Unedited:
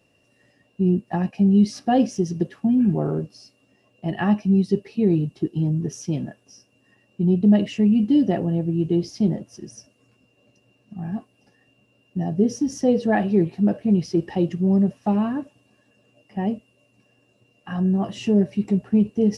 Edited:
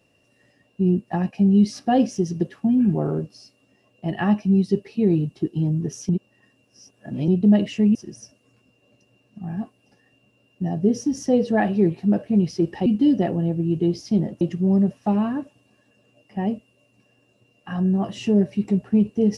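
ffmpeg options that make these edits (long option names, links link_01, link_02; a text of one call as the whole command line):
ffmpeg -i in.wav -filter_complex "[0:a]asplit=6[link_01][link_02][link_03][link_04][link_05][link_06];[link_01]atrim=end=6.092[link_07];[link_02]atrim=start=6.088:end=7.282,asetpts=PTS-STARTPTS,areverse[link_08];[link_03]atrim=start=7.278:end=7.952[link_09];[link_04]atrim=start=9.498:end=14.412[link_10];[link_05]atrim=start=7.948:end=9.502[link_11];[link_06]atrim=start=14.408[link_12];[link_07][link_08]acrossfade=duration=0.004:curve1=hsin:curve2=hsin[link_13];[link_13][link_09]acrossfade=duration=0.004:curve1=hsin:curve2=hsin[link_14];[link_14][link_10]acrossfade=duration=0.004:curve1=hsin:curve2=hsin[link_15];[link_15][link_11]acrossfade=duration=0.004:curve1=hsin:curve2=hsin[link_16];[link_16][link_12]acrossfade=duration=0.004:curve1=hsin:curve2=hsin" out.wav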